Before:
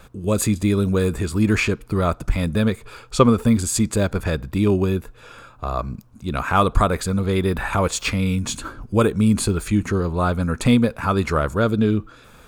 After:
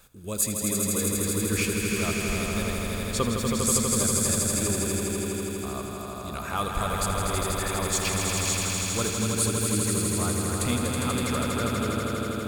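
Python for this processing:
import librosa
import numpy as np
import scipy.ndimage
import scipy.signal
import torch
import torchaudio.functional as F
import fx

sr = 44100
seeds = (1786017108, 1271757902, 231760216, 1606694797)

y = F.preemphasis(torch.from_numpy(x), 0.8).numpy()
y = fx.echo_swell(y, sr, ms=81, loudest=5, wet_db=-5.0)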